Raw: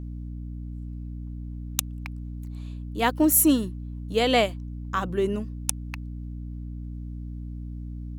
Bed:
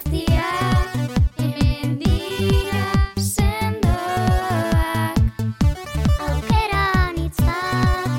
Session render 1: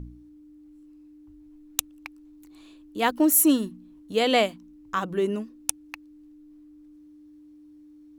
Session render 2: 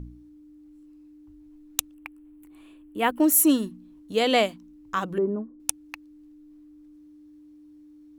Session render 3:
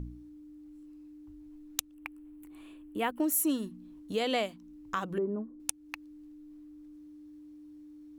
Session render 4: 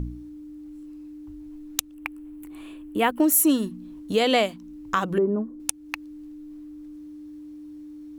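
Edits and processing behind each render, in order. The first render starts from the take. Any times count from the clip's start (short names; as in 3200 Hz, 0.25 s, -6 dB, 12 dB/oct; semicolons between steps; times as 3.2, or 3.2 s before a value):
de-hum 60 Hz, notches 4
1.94–3.2 band shelf 5100 Hz -13 dB 1.1 oct; 5.18–5.6 inverse Chebyshev low-pass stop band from 4900 Hz, stop band 70 dB
compressor 2:1, threshold -34 dBFS, peak gain reduction 10.5 dB
gain +9.5 dB; limiter -2 dBFS, peak gain reduction 3 dB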